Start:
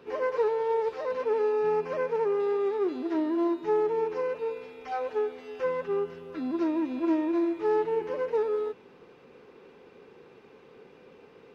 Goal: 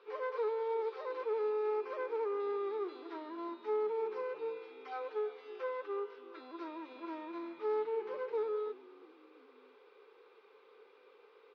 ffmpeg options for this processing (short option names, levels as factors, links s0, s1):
-filter_complex "[0:a]tiltshelf=f=1200:g=-6,asoftclip=type=tanh:threshold=0.0708,highpass=f=410:w=0.5412,highpass=f=410:w=1.3066,equalizer=f=430:t=q:w=4:g=6,equalizer=f=670:t=q:w=4:g=-6,equalizer=f=1200:t=q:w=4:g=4,equalizer=f=1800:t=q:w=4:g=-7,equalizer=f=2800:t=q:w=4:g=-8,lowpass=f=3900:w=0.5412,lowpass=f=3900:w=1.3066,asplit=4[s0][s1][s2][s3];[s1]adelay=343,afreqshift=-56,volume=0.0841[s4];[s2]adelay=686,afreqshift=-112,volume=0.0394[s5];[s3]adelay=1029,afreqshift=-168,volume=0.0186[s6];[s0][s4][s5][s6]amix=inputs=4:normalize=0,volume=0.531"